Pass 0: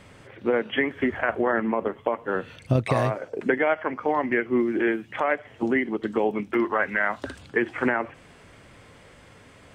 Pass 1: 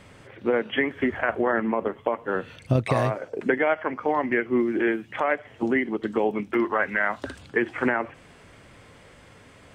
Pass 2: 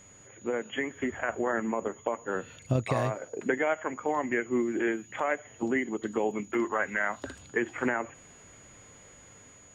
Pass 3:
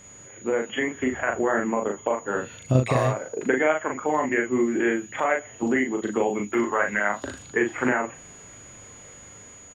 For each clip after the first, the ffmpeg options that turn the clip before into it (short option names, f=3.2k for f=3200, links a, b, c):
-af anull
-af "dynaudnorm=f=790:g=3:m=3.5dB,aeval=exprs='val(0)+0.00562*sin(2*PI*6800*n/s)':c=same,volume=-8.5dB"
-filter_complex "[0:a]asplit=2[a][b];[b]adelay=39,volume=-4dB[c];[a][c]amix=inputs=2:normalize=0,volume=4.5dB"